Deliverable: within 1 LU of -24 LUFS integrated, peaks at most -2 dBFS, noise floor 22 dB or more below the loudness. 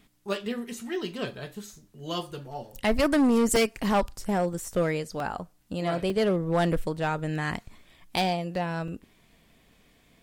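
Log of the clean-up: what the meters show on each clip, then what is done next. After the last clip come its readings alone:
clipped samples 1.5%; clipping level -18.0 dBFS; dropouts 5; longest dropout 1.9 ms; loudness -28.0 LUFS; peak level -18.0 dBFS; loudness target -24.0 LUFS
-> clip repair -18 dBFS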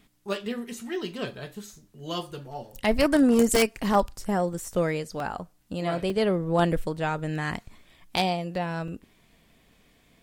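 clipped samples 0.0%; dropouts 5; longest dropout 1.9 ms
-> interpolate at 3.56/4.53/5.20/6.10/8.88 s, 1.9 ms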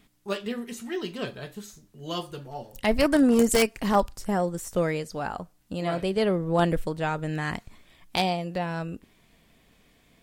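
dropouts 0; loudness -27.0 LUFS; peak level -9.0 dBFS; loudness target -24.0 LUFS
-> trim +3 dB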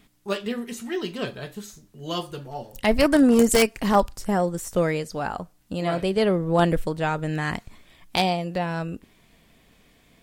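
loudness -24.0 LUFS; peak level -6.0 dBFS; noise floor -59 dBFS

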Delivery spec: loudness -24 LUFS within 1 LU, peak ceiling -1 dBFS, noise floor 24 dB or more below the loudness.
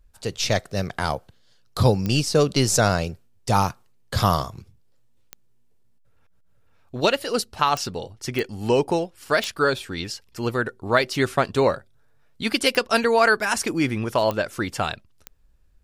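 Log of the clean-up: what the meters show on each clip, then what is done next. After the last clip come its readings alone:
clicks found 8; loudness -23.0 LUFS; peak level -4.0 dBFS; loudness target -24.0 LUFS
-> de-click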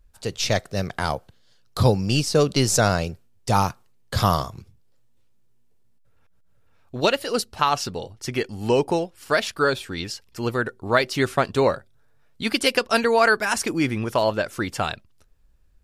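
clicks found 0; loudness -23.0 LUFS; peak level -4.0 dBFS; loudness target -24.0 LUFS
-> trim -1 dB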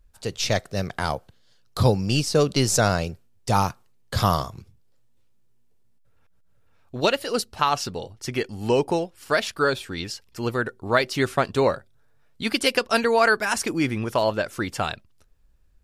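loudness -24.0 LUFS; peak level -5.0 dBFS; noise floor -58 dBFS

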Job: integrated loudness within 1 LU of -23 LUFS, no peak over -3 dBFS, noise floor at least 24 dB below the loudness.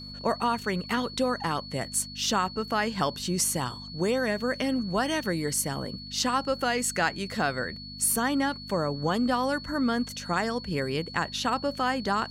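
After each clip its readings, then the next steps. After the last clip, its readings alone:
hum 50 Hz; highest harmonic 250 Hz; hum level -41 dBFS; steady tone 4.4 kHz; tone level -41 dBFS; loudness -28.0 LUFS; peak level -11.5 dBFS; loudness target -23.0 LUFS
-> de-hum 50 Hz, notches 5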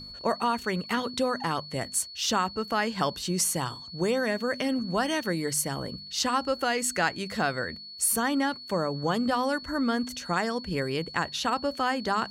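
hum not found; steady tone 4.4 kHz; tone level -41 dBFS
-> band-stop 4.4 kHz, Q 30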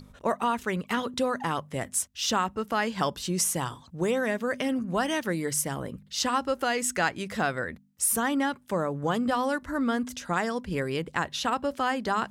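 steady tone not found; loudness -28.5 LUFS; peak level -11.5 dBFS; loudness target -23.0 LUFS
-> trim +5.5 dB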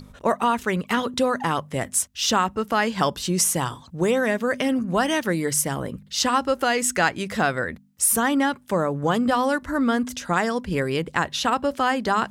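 loudness -23.0 LUFS; peak level -6.0 dBFS; noise floor -49 dBFS

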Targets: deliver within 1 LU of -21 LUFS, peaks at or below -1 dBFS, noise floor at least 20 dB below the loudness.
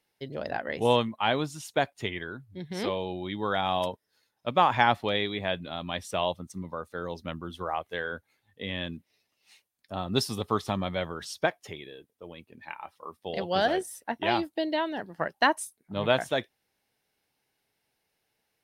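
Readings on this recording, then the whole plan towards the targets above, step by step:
loudness -29.5 LUFS; peak level -6.0 dBFS; loudness target -21.0 LUFS
-> trim +8.5 dB; peak limiter -1 dBFS

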